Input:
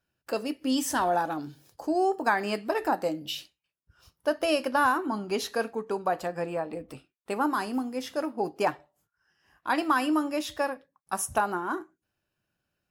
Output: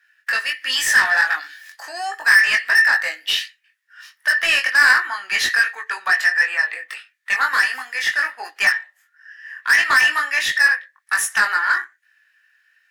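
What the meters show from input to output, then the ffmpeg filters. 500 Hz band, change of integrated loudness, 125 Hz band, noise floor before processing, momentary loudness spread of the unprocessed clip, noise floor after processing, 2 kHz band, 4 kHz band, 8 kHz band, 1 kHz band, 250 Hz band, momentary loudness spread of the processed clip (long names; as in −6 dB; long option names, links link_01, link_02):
−10.5 dB, +12.0 dB, can't be measured, −84 dBFS, 11 LU, −65 dBFS, +20.5 dB, +15.0 dB, +11.0 dB, +2.5 dB, below −15 dB, 12 LU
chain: -filter_complex "[0:a]highpass=frequency=1800:width_type=q:width=15,asplit=2[link_01][link_02];[link_02]highpass=frequency=720:poles=1,volume=24dB,asoftclip=type=tanh:threshold=-3.5dB[link_03];[link_01][link_03]amix=inputs=2:normalize=0,lowpass=frequency=6900:poles=1,volume=-6dB,flanger=delay=19.5:depth=2.2:speed=1.4"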